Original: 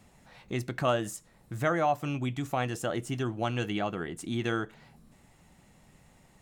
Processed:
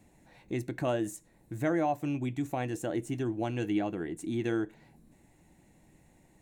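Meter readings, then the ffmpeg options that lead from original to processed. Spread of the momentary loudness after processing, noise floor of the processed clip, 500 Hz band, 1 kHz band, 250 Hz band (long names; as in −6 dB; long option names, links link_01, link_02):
8 LU, −64 dBFS, −1.5 dB, −5.0 dB, +2.0 dB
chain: -af "equalizer=frequency=315:width_type=o:width=0.33:gain=10,equalizer=frequency=1250:width_type=o:width=0.33:gain=-12,equalizer=frequency=3150:width_type=o:width=0.33:gain=-7,equalizer=frequency=5000:width_type=o:width=0.33:gain=-8,volume=-3dB"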